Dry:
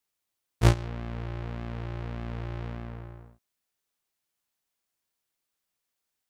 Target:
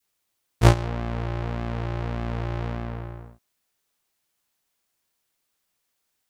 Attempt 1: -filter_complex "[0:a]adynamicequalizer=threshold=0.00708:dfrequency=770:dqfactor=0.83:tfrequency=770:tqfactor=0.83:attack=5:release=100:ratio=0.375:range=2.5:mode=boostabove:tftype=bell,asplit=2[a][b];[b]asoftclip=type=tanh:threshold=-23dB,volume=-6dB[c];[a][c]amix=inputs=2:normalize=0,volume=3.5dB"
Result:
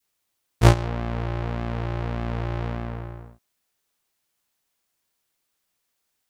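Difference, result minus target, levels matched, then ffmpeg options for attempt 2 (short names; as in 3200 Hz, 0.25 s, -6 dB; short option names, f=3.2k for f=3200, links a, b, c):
soft clip: distortion -5 dB
-filter_complex "[0:a]adynamicequalizer=threshold=0.00708:dfrequency=770:dqfactor=0.83:tfrequency=770:tqfactor=0.83:attack=5:release=100:ratio=0.375:range=2.5:mode=boostabove:tftype=bell,asplit=2[a][b];[b]asoftclip=type=tanh:threshold=-33.5dB,volume=-6dB[c];[a][c]amix=inputs=2:normalize=0,volume=3.5dB"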